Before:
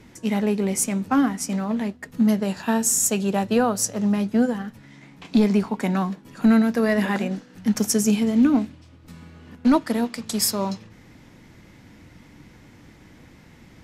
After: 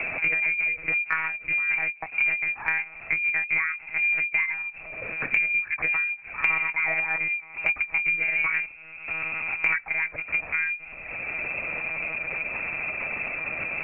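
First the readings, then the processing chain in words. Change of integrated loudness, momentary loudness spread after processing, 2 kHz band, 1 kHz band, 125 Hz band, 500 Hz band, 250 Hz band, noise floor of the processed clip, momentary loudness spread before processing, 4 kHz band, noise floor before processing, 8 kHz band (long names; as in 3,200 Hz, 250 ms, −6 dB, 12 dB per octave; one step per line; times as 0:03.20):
−3.0 dB, 7 LU, +13.5 dB, −7.0 dB, −18.0 dB, −15.5 dB, −29.0 dB, −44 dBFS, 9 LU, below −15 dB, −50 dBFS, below −40 dB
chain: voice inversion scrambler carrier 2,600 Hz
one-pitch LPC vocoder at 8 kHz 160 Hz
multiband upward and downward compressor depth 100%
level −4 dB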